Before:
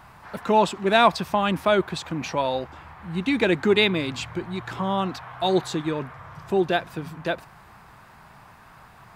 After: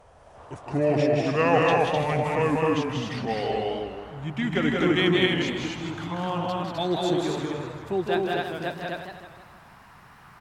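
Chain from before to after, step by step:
gliding playback speed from 65% → 111%
loudspeakers that aren't time-aligned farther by 64 metres −3 dB, 88 metres −2 dB
feedback echo with a swinging delay time 158 ms, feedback 51%, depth 144 cents, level −7.5 dB
level −5.5 dB

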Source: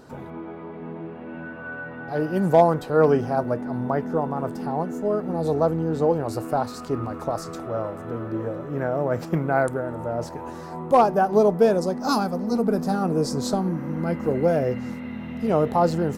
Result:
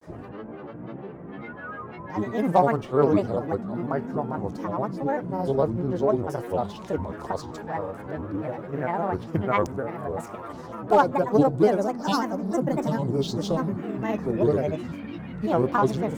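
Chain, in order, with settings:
running median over 3 samples
harmonic generator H 3 −28 dB, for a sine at −6 dBFS
granular cloud, spray 30 ms, pitch spread up and down by 7 semitones

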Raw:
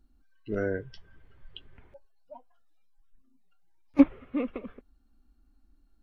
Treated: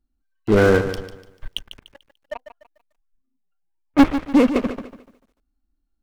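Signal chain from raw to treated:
leveller curve on the samples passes 5
0:02.35–0:03.98: Bessel low-pass filter 2,100 Hz, order 2
feedback echo at a low word length 147 ms, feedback 35%, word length 10 bits, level −11 dB

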